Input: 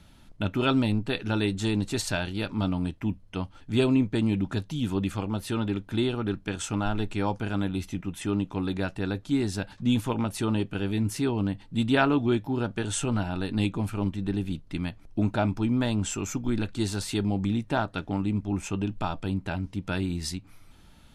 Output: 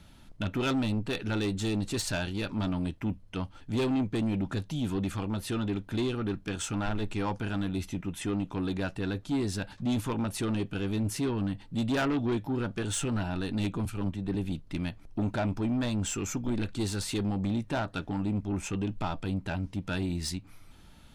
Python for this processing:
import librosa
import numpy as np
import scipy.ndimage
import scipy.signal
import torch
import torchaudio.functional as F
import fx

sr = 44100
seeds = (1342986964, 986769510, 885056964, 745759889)

y = 10.0 ** (-24.0 / 20.0) * np.tanh(x / 10.0 ** (-24.0 / 20.0))
y = fx.band_widen(y, sr, depth_pct=70, at=(13.85, 14.35))